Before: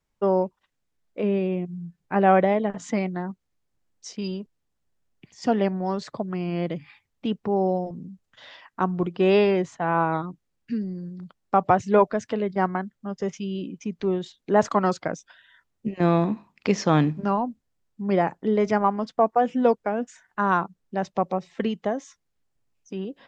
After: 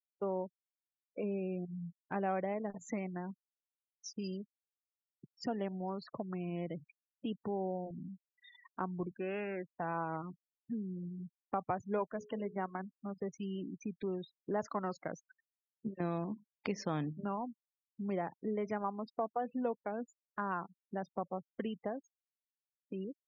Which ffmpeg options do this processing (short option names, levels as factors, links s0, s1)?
-filter_complex "[0:a]asettb=1/sr,asplit=3[s0][s1][s2];[s0]atrim=end=9.114[s3];[s1]atrim=start=9.11:end=9.75,asetpts=PTS-STARTPTS,afade=t=in:d=0.004:c=qsin,afade=t=out:st=0.636:d=0.004:c=qsin,highpass=290,equalizer=f=410:t=q:w=4:g=-9,equalizer=f=680:t=q:w=4:g=-8,equalizer=f=990:t=q:w=4:g=-9,equalizer=f=1600:t=q:w=4:g=8,lowpass=f=2300:w=0.5412,lowpass=f=2300:w=1.3066[s4];[s2]atrim=start=9.746[s5];[s3][s4]acrossfade=d=0.004:c1=hsin:c2=qsin[s6];[s6][s5]acrossfade=d=0.004:c1=qsin:c2=hsin,asettb=1/sr,asplit=3[s7][s8][s9];[s7]atrim=end=12.134[s10];[s8]atrim=start=12.13:end=13.18,asetpts=PTS-STARTPTS,afade=t=in:d=0.004:c=qsin,afade=t=out:st=1.046:d=0.004:c=qsin,bandreject=f=60:t=h:w=6,bandreject=f=120:t=h:w=6,bandreject=f=180:t=h:w=6,bandreject=f=240:t=h:w=6,bandreject=f=300:t=h:w=6,bandreject=f=360:t=h:w=6,bandreject=f=420:t=h:w=6,bandreject=f=480:t=h:w=6,bandreject=f=540:t=h:w=6[s11];[s9]atrim=start=13.176[s12];[s10][s11]acrossfade=d=0.004:c1=hsin:c2=qsin[s13];[s13][s12]acrossfade=d=0.004:c1=qsin:c2=hsin,afftfilt=real='re*gte(hypot(re,im),0.02)':imag='im*gte(hypot(re,im),0.02)':win_size=1024:overlap=0.75,acompressor=threshold=0.0158:ratio=2,volume=0.562"